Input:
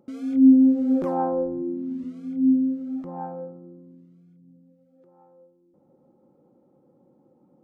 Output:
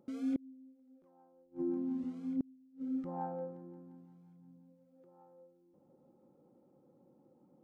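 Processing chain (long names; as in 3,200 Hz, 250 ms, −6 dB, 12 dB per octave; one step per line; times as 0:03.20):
healed spectral selection 0:02.46–0:03.02, 340–1,200 Hz before
delay with a high-pass on its return 175 ms, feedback 68%, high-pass 1,400 Hz, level −12 dB
gate with flip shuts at −19 dBFS, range −35 dB
level −6 dB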